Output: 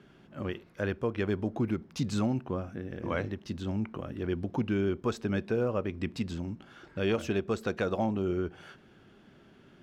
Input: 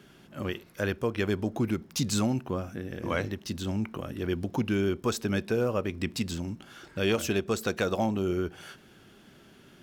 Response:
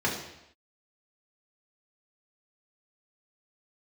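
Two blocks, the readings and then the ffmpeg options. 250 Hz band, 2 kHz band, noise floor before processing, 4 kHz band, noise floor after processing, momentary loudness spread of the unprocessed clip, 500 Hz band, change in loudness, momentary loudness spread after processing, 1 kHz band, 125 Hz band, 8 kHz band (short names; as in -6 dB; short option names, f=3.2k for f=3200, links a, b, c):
-1.5 dB, -4.0 dB, -55 dBFS, -7.5 dB, -58 dBFS, 9 LU, -2.0 dB, -2.0 dB, 9 LU, -2.5 dB, -1.5 dB, -13.0 dB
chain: -af "aemphasis=mode=reproduction:type=75fm,volume=-2.5dB"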